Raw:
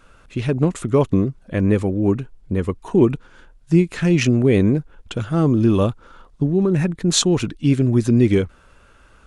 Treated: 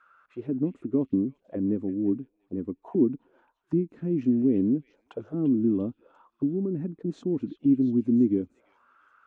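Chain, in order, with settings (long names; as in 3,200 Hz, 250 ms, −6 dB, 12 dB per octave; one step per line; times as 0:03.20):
envelope filter 270–1,400 Hz, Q 4, down, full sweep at −18 dBFS
echo through a band-pass that steps 345 ms, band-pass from 2,600 Hz, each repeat 0.7 octaves, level −6 dB
level −1.5 dB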